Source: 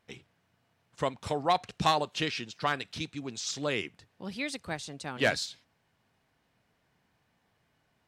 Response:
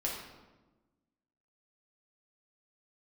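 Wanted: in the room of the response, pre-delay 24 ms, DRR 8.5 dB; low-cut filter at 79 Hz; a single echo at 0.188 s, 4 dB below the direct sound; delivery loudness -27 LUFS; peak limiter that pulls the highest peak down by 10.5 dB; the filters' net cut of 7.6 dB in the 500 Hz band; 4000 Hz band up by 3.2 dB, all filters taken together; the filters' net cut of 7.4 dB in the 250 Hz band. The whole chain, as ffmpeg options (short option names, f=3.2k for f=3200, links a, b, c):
-filter_complex "[0:a]highpass=79,equalizer=f=250:t=o:g=-7.5,equalizer=f=500:t=o:g=-8.5,equalizer=f=4k:t=o:g=4,alimiter=limit=-23dB:level=0:latency=1,aecho=1:1:188:0.631,asplit=2[a][b];[1:a]atrim=start_sample=2205,adelay=24[c];[b][c]afir=irnorm=-1:irlink=0,volume=-12.5dB[d];[a][d]amix=inputs=2:normalize=0,volume=7.5dB"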